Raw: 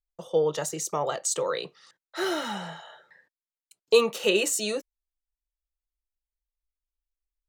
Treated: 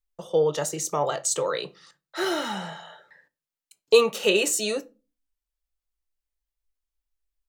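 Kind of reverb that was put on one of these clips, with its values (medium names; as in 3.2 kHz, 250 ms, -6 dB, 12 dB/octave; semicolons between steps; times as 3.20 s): simulated room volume 120 m³, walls furnished, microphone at 0.33 m; trim +2 dB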